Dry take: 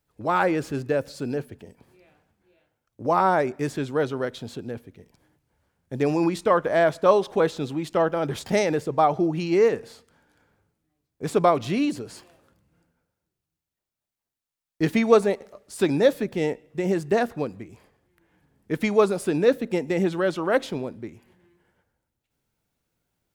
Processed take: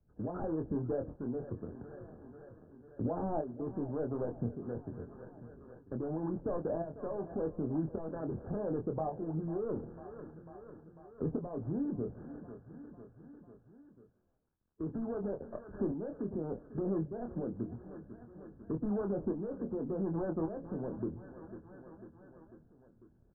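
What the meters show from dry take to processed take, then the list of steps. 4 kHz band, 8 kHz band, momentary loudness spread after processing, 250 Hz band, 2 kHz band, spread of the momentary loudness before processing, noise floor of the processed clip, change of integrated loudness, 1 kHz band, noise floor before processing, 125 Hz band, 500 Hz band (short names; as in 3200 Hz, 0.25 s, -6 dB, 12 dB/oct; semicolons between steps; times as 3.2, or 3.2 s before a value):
under -40 dB, under -35 dB, 17 LU, -10.0 dB, -28.5 dB, 14 LU, -66 dBFS, -14.5 dB, -20.0 dB, under -85 dBFS, -7.5 dB, -15.5 dB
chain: median filter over 41 samples; harmonic-percussive split harmonic -10 dB; limiter -31.5 dBFS, peak gain reduction 19.5 dB; tremolo saw up 0.88 Hz, depth 70%; Chebyshev low-pass 1700 Hz, order 10; low shelf 130 Hz +8.5 dB; doubler 25 ms -6 dB; feedback echo 0.497 s, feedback 51%, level -17.5 dB; treble ducked by the level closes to 810 Hz, closed at -40 dBFS; three-band squash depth 40%; gain +5 dB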